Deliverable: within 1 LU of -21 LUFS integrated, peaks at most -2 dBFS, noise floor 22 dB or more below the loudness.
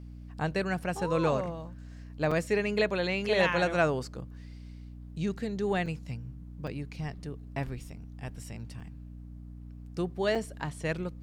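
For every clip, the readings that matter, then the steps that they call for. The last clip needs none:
dropouts 5; longest dropout 4.9 ms; hum 60 Hz; harmonics up to 300 Hz; hum level -42 dBFS; loudness -31.5 LUFS; peak -13.0 dBFS; loudness target -21.0 LUFS
-> interpolate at 2.31/5.86/6.67/8.8/10.35, 4.9 ms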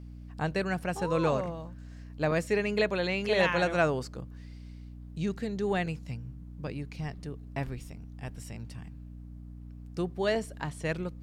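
dropouts 0; hum 60 Hz; harmonics up to 300 Hz; hum level -42 dBFS
-> de-hum 60 Hz, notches 5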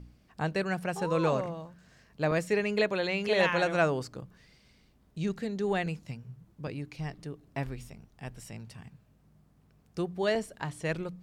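hum none; loudness -31.0 LUFS; peak -12.5 dBFS; loudness target -21.0 LUFS
-> gain +10 dB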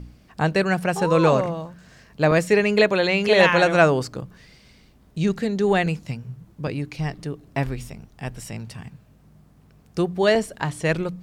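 loudness -21.0 LUFS; peak -2.5 dBFS; noise floor -54 dBFS

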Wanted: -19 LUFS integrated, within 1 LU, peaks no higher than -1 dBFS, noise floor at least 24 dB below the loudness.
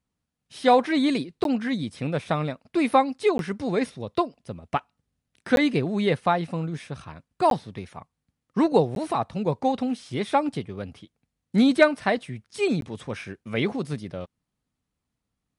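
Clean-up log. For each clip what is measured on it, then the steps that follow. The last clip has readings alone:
dropouts 6; longest dropout 12 ms; loudness -25.0 LUFS; peak -5.5 dBFS; loudness target -19.0 LUFS
-> interpolate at 1.44/3.38/5.56/7.5/8.95/12.81, 12 ms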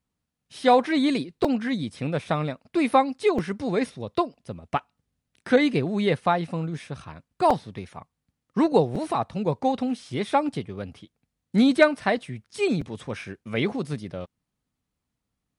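dropouts 0; loudness -25.0 LUFS; peak -5.5 dBFS; loudness target -19.0 LUFS
-> gain +6 dB; limiter -1 dBFS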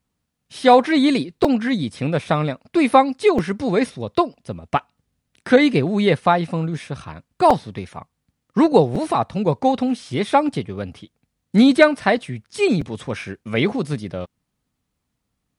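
loudness -19.0 LUFS; peak -1.0 dBFS; noise floor -77 dBFS

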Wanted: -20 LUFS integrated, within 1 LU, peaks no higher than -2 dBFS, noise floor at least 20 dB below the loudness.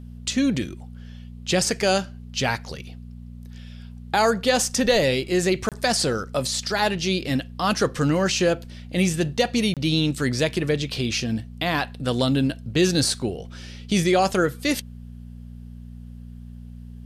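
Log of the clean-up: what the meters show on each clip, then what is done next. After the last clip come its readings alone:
dropouts 2; longest dropout 27 ms; hum 60 Hz; harmonics up to 240 Hz; hum level -37 dBFS; loudness -23.0 LUFS; peak -7.5 dBFS; loudness target -20.0 LUFS
-> interpolate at 5.69/9.74, 27 ms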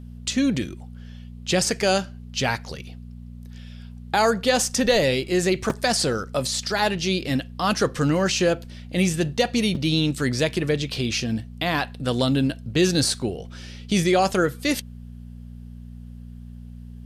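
dropouts 0; hum 60 Hz; harmonics up to 120 Hz; hum level -38 dBFS
-> de-hum 60 Hz, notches 2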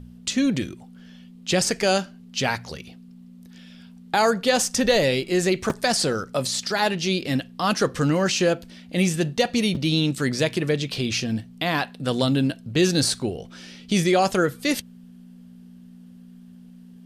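hum none; loudness -23.0 LUFS; peak -7.5 dBFS; loudness target -20.0 LUFS
-> gain +3 dB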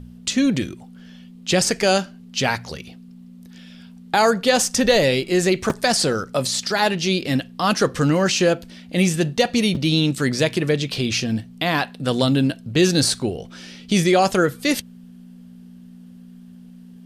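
loudness -20.0 LUFS; peak -4.5 dBFS; noise floor -43 dBFS

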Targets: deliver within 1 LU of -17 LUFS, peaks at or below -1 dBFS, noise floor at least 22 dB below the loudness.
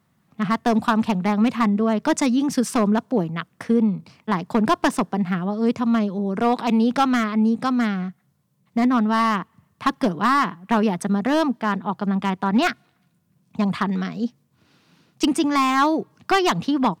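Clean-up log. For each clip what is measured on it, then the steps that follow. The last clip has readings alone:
clipped 0.7%; flat tops at -11.0 dBFS; loudness -21.5 LUFS; peak -11.0 dBFS; loudness target -17.0 LUFS
-> clip repair -11 dBFS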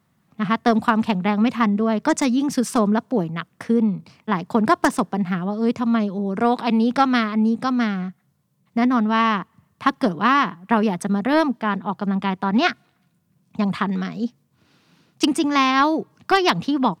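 clipped 0.0%; loudness -21.0 LUFS; peak -2.0 dBFS; loudness target -17.0 LUFS
-> gain +4 dB; limiter -1 dBFS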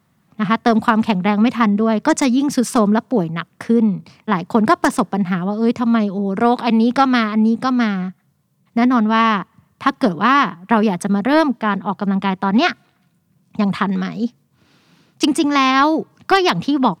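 loudness -17.0 LUFS; peak -1.0 dBFS; noise floor -62 dBFS

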